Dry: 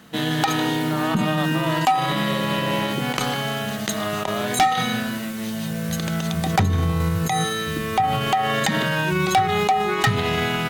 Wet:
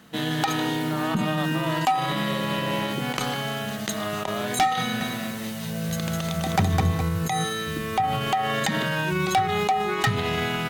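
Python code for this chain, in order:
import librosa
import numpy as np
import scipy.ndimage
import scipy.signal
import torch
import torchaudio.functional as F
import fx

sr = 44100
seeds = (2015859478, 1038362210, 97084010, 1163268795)

y = fx.echo_crushed(x, sr, ms=207, feedback_pct=35, bits=8, wet_db=-3.5, at=(4.8, 7.01))
y = y * 10.0 ** (-3.5 / 20.0)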